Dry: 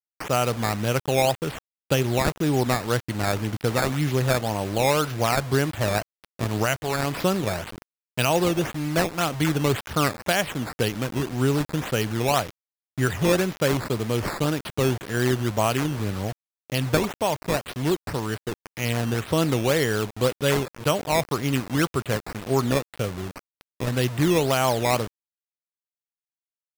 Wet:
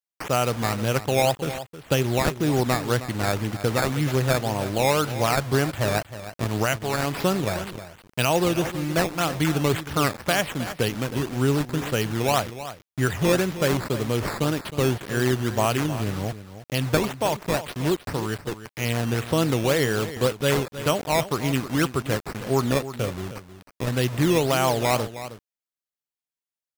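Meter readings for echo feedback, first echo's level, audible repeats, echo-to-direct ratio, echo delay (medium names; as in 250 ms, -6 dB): no regular repeats, -13.0 dB, 1, -13.0 dB, 314 ms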